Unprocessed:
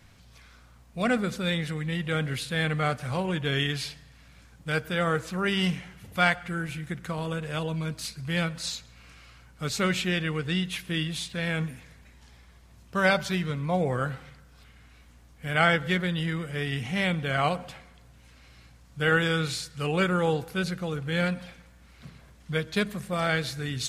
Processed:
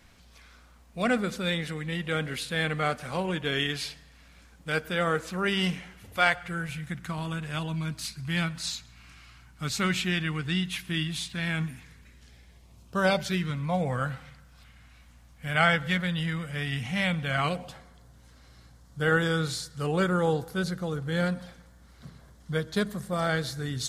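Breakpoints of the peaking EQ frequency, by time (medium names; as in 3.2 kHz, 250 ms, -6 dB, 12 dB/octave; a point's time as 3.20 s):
peaking EQ -12 dB 0.5 oct
5.86 s 120 Hz
7.11 s 500 Hz
11.75 s 500 Hz
13.02 s 2.3 kHz
13.59 s 380 Hz
17.34 s 380 Hz
17.74 s 2.5 kHz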